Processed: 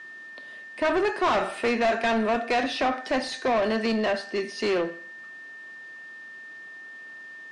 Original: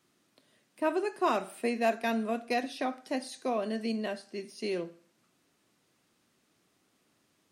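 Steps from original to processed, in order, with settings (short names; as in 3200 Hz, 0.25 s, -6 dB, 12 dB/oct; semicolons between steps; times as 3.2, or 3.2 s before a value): overdrive pedal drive 26 dB, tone 2700 Hz, clips at -15.5 dBFS; whine 1800 Hz -40 dBFS; Bessel low-pass 6500 Hz, order 4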